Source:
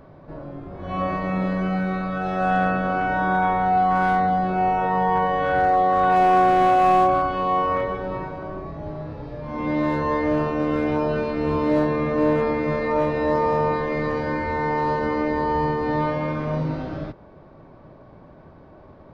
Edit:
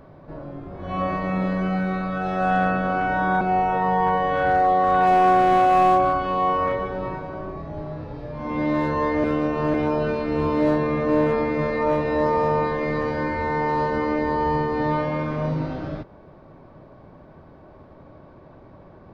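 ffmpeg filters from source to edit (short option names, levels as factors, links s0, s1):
-filter_complex "[0:a]asplit=4[s0][s1][s2][s3];[s0]atrim=end=3.412[s4];[s1]atrim=start=4.498:end=10.332[s5];[s2]atrim=start=10.328:end=10.832,asetpts=PTS-STARTPTS,areverse[s6];[s3]atrim=start=10.828[s7];[s4][s5]acrossfade=d=0.004:c1=hsin:c2=hsin[s8];[s8][s6]acrossfade=d=0.004:c1=hsin:c2=hsin[s9];[s9][s7]acrossfade=d=0.004:c1=hsin:c2=hsin"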